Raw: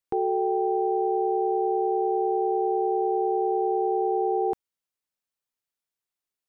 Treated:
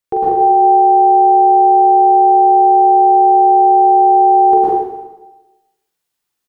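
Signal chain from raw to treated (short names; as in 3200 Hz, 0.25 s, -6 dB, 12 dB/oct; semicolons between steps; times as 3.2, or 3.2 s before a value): dynamic EQ 640 Hz, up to +6 dB, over -39 dBFS, Q 0.71; on a send: early reflections 42 ms -5 dB, 57 ms -17 dB; on the sum: plate-style reverb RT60 1.1 s, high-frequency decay 0.95×, pre-delay 95 ms, DRR -7.5 dB; gain +4.5 dB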